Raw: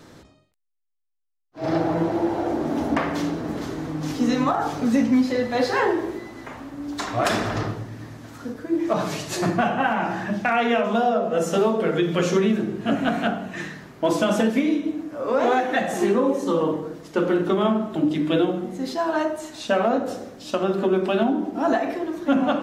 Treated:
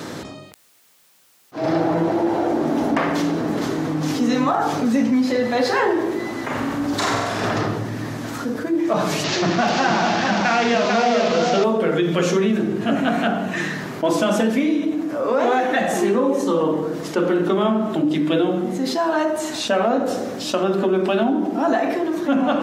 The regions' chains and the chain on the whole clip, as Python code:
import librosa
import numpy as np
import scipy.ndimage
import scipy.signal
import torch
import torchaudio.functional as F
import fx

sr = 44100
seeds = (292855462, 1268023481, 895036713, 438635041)

y = fx.chain(x, sr, fx.over_compress(threshold_db=-28.0, ratio=-0.5),
    fx.low_shelf(hz=79.0, db=11.0),
    fx.room_flutter(wall_m=8.0, rt60_s=0.88), at=(6.5, 7.46))
y = fx.chain(y, sr, fx.delta_mod(bps=32000, step_db=-22.0),
    fx.echo_single(ms=443, db=-4.5), at=(9.24, 11.64))
y = scipy.signal.sosfilt(scipy.signal.butter(2, 130.0, 'highpass', fs=sr, output='sos'), y)
y = fx.env_flatten(y, sr, amount_pct=50)